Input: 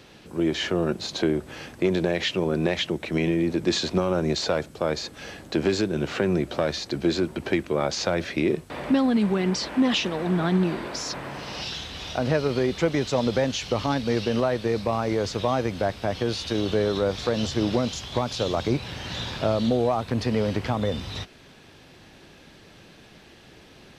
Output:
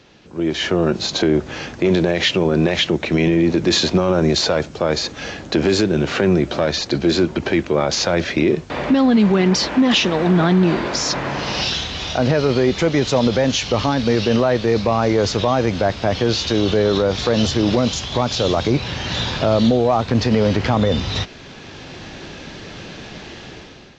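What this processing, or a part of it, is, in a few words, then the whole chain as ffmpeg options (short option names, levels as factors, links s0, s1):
low-bitrate web radio: -af "dynaudnorm=f=180:g=7:m=5.96,alimiter=limit=0.447:level=0:latency=1:release=20" -ar 16000 -c:a aac -b:a 48k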